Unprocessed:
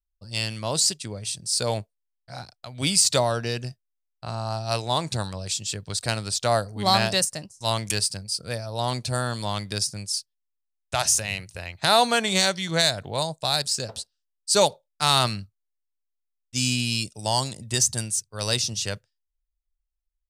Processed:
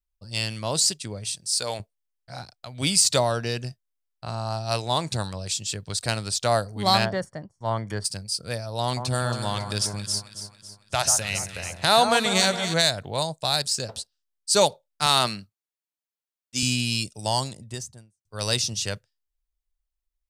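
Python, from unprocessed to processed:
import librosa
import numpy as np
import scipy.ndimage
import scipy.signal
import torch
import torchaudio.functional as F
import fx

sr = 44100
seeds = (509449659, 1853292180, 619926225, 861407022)

y = fx.low_shelf(x, sr, hz=450.0, db=-11.5, at=(1.35, 1.8))
y = fx.savgol(y, sr, points=41, at=(7.04, 8.04), fade=0.02)
y = fx.echo_alternate(y, sr, ms=138, hz=1500.0, feedback_pct=67, wet_db=-7.0, at=(8.83, 12.74))
y = fx.highpass(y, sr, hz=170.0, slope=12, at=(15.06, 16.63))
y = fx.studio_fade_out(y, sr, start_s=17.21, length_s=1.04)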